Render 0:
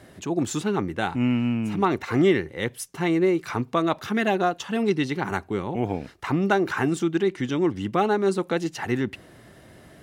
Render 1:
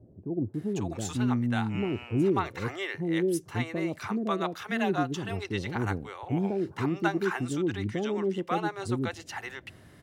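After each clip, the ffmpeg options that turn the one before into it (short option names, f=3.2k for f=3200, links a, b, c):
-filter_complex "[0:a]equalizer=f=100:w=2.7:g=7.5,acrossover=split=550[a][b];[b]adelay=540[c];[a][c]amix=inputs=2:normalize=0,volume=-5dB"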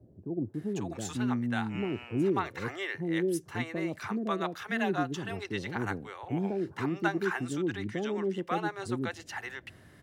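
-filter_complex "[0:a]equalizer=f=1.7k:w=3.7:g=4,acrossover=split=120[a][b];[a]acompressor=threshold=-47dB:ratio=6[c];[c][b]amix=inputs=2:normalize=0,volume=-2.5dB"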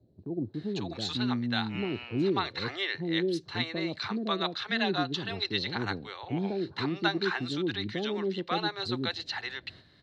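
-af "lowpass=f=4.1k:t=q:w=11,agate=range=-7dB:threshold=-50dB:ratio=16:detection=peak"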